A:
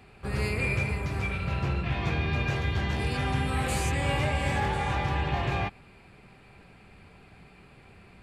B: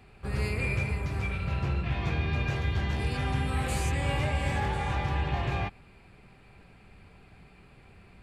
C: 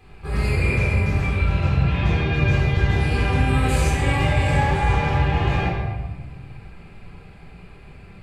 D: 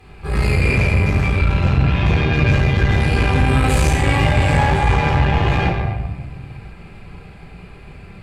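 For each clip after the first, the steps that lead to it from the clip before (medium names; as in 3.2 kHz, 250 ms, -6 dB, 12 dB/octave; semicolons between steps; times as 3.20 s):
bass shelf 75 Hz +7 dB; trim -3 dB
reverberation RT60 1.2 s, pre-delay 13 ms, DRR -5 dB
valve stage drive 15 dB, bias 0.55; trim +7.5 dB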